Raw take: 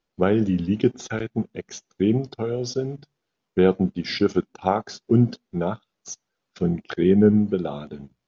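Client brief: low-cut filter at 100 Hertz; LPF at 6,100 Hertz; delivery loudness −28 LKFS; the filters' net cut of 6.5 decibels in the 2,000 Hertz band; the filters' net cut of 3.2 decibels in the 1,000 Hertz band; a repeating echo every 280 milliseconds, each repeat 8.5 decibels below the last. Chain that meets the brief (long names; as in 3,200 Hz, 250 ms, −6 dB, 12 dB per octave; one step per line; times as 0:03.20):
high-pass filter 100 Hz
low-pass filter 6,100 Hz
parametric band 1,000 Hz −3 dB
parametric band 2,000 Hz −8 dB
repeating echo 280 ms, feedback 38%, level −8.5 dB
level −4.5 dB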